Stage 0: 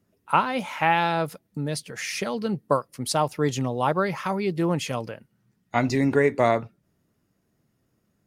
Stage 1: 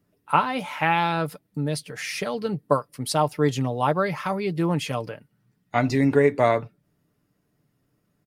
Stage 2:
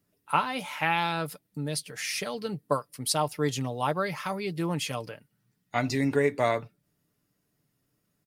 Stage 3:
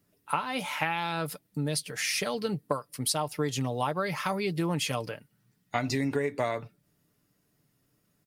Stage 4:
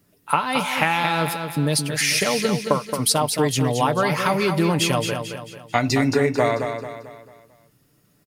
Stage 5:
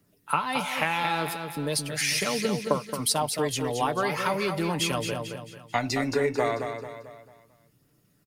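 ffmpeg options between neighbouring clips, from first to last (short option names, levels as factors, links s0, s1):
-af "equalizer=f=6500:t=o:w=0.41:g=-4.5,aecho=1:1:6.8:0.36"
-af "highshelf=f=2700:g=9.5,volume=0.473"
-af "acompressor=threshold=0.0398:ratio=12,volume=1.5"
-af "aecho=1:1:221|442|663|884|1105:0.447|0.192|0.0826|0.0355|0.0153,volume=2.82"
-filter_complex "[0:a]acrossover=split=180|5000[s0][s1][s2];[s0]asoftclip=type=hard:threshold=0.0188[s3];[s3][s1][s2]amix=inputs=3:normalize=0,aphaser=in_gain=1:out_gain=1:delay=2.8:decay=0.25:speed=0.38:type=triangular,volume=0.501"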